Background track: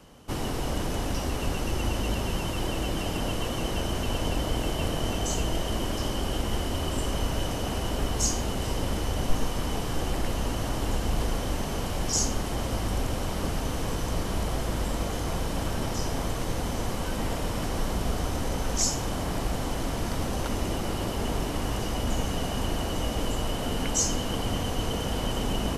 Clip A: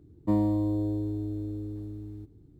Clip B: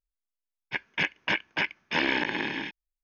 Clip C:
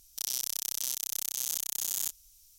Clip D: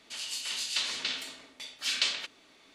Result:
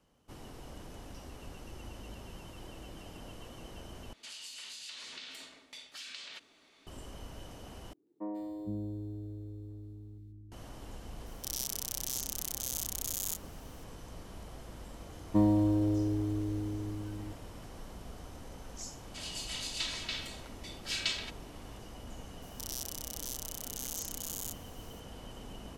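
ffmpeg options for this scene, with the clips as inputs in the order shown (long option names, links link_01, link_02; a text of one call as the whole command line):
ffmpeg -i bed.wav -i cue0.wav -i cue1.wav -i cue2.wav -i cue3.wav -filter_complex "[4:a]asplit=2[link_01][link_02];[1:a]asplit=2[link_03][link_04];[3:a]asplit=2[link_05][link_06];[0:a]volume=-18.5dB[link_07];[link_01]acompressor=threshold=-38dB:ratio=6:attack=3.2:release=140:knee=1:detection=peak[link_08];[link_03]acrossover=split=270|1900[link_09][link_10][link_11];[link_11]adelay=140[link_12];[link_09]adelay=460[link_13];[link_13][link_10][link_12]amix=inputs=3:normalize=0[link_14];[link_02]aecho=1:1:3.1:0.65[link_15];[link_06]alimiter=level_in=16.5dB:limit=-1dB:release=50:level=0:latency=1[link_16];[link_07]asplit=3[link_17][link_18][link_19];[link_17]atrim=end=4.134[link_20];[link_08]atrim=end=2.74,asetpts=PTS-STARTPTS,volume=-4.5dB[link_21];[link_18]atrim=start=6.866:end=7.934[link_22];[link_14]atrim=end=2.59,asetpts=PTS-STARTPTS,volume=-9.5dB[link_23];[link_19]atrim=start=10.516[link_24];[link_05]atrim=end=2.58,asetpts=PTS-STARTPTS,volume=-4dB,afade=type=in:duration=0.004:curve=hsin,afade=type=out:start_time=2.576:duration=0.004:curve=hsin,adelay=11260[link_25];[link_04]atrim=end=2.59,asetpts=PTS-STARTPTS,volume=-0.5dB,afade=type=in:duration=0.004:curve=hsin,afade=type=out:start_time=2.586:duration=0.004:curve=hsin,adelay=15070[link_26];[link_15]atrim=end=2.74,asetpts=PTS-STARTPTS,volume=-6.5dB,afade=type=in:duration=0.004:curve=hsin,afade=type=out:start_time=2.736:duration=0.004:curve=hsin,adelay=19040[link_27];[link_16]atrim=end=2.58,asetpts=PTS-STARTPTS,volume=-17.5dB,afade=type=in:duration=0.004:curve=hsin,afade=type=out:start_time=2.576:duration=0.004:curve=hsin,adelay=22420[link_28];[link_20][link_21]acrossfade=duration=0.004:curve1=hsin:curve2=hsin[link_29];[link_29][link_22]acrossfade=duration=0.004:curve1=hsin:curve2=hsin[link_30];[link_30][link_23]acrossfade=duration=0.004:curve1=hsin:curve2=hsin[link_31];[link_31][link_24]acrossfade=duration=0.004:curve1=hsin:curve2=hsin[link_32];[link_32][link_25][link_26][link_27][link_28]amix=inputs=5:normalize=0" out.wav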